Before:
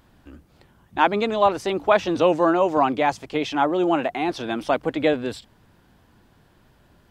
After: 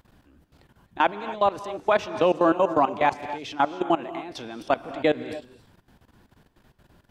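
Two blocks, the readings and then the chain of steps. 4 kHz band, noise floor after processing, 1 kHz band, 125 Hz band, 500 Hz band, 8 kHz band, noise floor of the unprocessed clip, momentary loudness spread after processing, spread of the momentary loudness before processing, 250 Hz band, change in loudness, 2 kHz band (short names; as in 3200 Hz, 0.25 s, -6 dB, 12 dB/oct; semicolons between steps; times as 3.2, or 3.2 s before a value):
-4.5 dB, -68 dBFS, -2.0 dB, -5.0 dB, -3.5 dB, n/a, -58 dBFS, 14 LU, 8 LU, -5.0 dB, -3.0 dB, -3.0 dB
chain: level quantiser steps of 19 dB; non-linear reverb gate 0.3 s rising, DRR 11.5 dB; gain +1 dB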